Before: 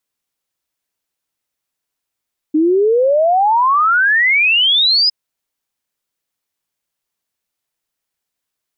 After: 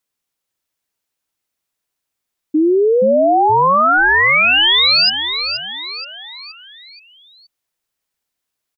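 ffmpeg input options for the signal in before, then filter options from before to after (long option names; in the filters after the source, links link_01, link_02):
-f lavfi -i "aevalsrc='0.335*clip(min(t,2.56-t)/0.01,0,1)*sin(2*PI*300*2.56/log(5100/300)*(exp(log(5100/300)*t/2.56)-1))':duration=2.56:sample_rate=44100"
-filter_complex "[0:a]asplit=6[link_01][link_02][link_03][link_04][link_05][link_06];[link_02]adelay=474,afreqshift=-100,volume=-8.5dB[link_07];[link_03]adelay=948,afreqshift=-200,volume=-15.1dB[link_08];[link_04]adelay=1422,afreqshift=-300,volume=-21.6dB[link_09];[link_05]adelay=1896,afreqshift=-400,volume=-28.2dB[link_10];[link_06]adelay=2370,afreqshift=-500,volume=-34.7dB[link_11];[link_01][link_07][link_08][link_09][link_10][link_11]amix=inputs=6:normalize=0"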